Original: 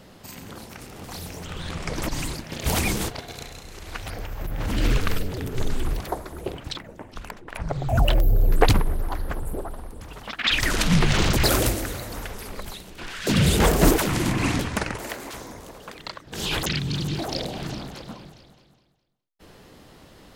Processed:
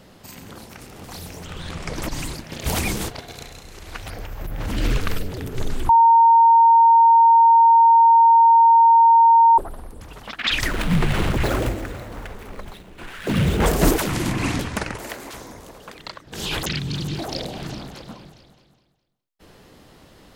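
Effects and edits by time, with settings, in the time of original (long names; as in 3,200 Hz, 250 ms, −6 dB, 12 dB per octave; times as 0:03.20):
0:05.89–0:09.58: beep over 920 Hz −9 dBFS
0:10.67–0:13.66: running median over 9 samples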